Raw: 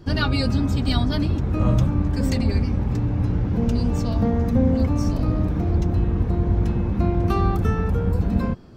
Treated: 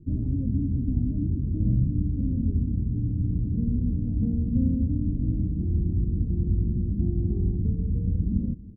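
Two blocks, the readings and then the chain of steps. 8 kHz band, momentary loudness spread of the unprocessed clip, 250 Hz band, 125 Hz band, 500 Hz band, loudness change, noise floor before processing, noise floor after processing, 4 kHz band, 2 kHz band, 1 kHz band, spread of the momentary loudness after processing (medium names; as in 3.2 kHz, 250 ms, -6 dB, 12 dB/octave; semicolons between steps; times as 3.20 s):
under -35 dB, 3 LU, -5.0 dB, -4.0 dB, -15.5 dB, -4.5 dB, -25 dBFS, -30 dBFS, under -40 dB, under -40 dB, under -35 dB, 3 LU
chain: inverse Chebyshev low-pass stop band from 1.8 kHz, stop band 80 dB; on a send: feedback delay 328 ms, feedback 51%, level -20 dB; on the sum: trim -4 dB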